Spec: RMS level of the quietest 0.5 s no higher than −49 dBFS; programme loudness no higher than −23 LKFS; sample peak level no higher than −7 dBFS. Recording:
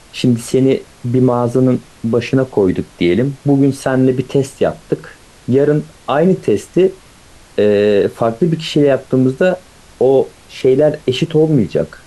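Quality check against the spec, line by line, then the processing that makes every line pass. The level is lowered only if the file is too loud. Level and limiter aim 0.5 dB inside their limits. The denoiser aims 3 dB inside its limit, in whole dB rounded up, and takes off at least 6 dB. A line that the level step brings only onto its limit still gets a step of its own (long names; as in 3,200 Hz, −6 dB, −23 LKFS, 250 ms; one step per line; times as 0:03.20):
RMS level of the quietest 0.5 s −42 dBFS: out of spec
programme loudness −15.0 LKFS: out of spec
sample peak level −3.0 dBFS: out of spec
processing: level −8.5 dB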